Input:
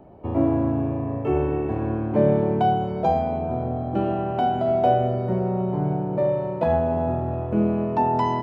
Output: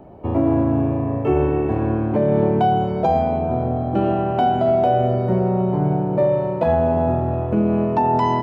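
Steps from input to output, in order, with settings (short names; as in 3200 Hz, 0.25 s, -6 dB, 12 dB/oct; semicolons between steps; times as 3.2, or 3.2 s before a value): limiter -14 dBFS, peak gain reduction 6.5 dB; gain +5 dB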